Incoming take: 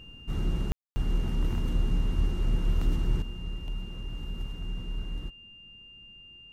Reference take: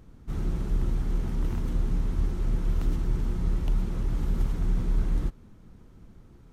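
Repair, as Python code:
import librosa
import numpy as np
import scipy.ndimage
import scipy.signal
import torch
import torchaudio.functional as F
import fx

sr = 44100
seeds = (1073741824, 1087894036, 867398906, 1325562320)

y = fx.notch(x, sr, hz=2800.0, q=30.0)
y = fx.fix_ambience(y, sr, seeds[0], print_start_s=5.54, print_end_s=6.04, start_s=0.72, end_s=0.96)
y = fx.gain(y, sr, db=fx.steps((0.0, 0.0), (3.22, 9.5)))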